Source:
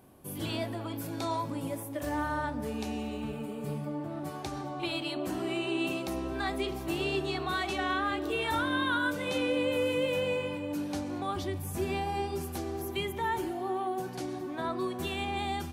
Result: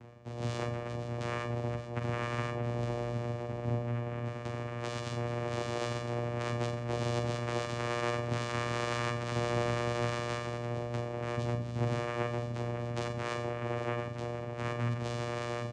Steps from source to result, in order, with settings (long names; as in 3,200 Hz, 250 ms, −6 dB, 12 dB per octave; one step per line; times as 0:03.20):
stylus tracing distortion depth 0.044 ms
full-wave rectification
comb filter 7.4 ms, depth 81%
channel vocoder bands 4, saw 119 Hz
reversed playback
upward compression, threshold −41 dBFS
reversed playback
flutter between parallel walls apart 7.5 metres, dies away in 0.39 s
level +2 dB